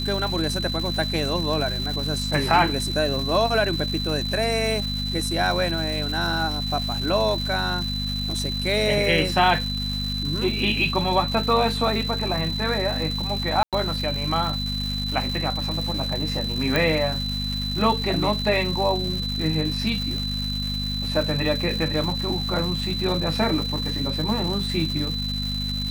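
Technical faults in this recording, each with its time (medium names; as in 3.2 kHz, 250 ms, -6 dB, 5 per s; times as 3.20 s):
crackle 490 per s -29 dBFS
hum 50 Hz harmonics 5 -29 dBFS
whine 4 kHz -28 dBFS
13.63–13.73 s: dropout 97 ms
16.76 s: pop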